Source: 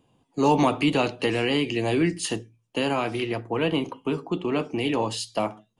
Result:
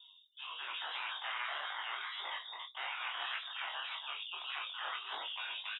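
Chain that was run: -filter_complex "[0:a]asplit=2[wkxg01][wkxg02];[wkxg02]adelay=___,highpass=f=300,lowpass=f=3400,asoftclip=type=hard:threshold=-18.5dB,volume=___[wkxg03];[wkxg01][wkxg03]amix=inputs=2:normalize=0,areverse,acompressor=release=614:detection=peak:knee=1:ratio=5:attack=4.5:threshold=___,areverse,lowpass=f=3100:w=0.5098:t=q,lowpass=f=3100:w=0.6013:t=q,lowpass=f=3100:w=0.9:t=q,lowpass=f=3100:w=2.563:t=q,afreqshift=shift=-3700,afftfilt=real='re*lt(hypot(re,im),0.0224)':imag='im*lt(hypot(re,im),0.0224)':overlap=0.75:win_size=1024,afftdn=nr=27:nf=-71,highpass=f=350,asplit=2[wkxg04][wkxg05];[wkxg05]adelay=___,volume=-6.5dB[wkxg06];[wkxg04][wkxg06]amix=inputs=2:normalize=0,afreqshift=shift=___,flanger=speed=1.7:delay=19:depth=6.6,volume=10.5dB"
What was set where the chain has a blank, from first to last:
280, -12dB, -34dB, 22, 120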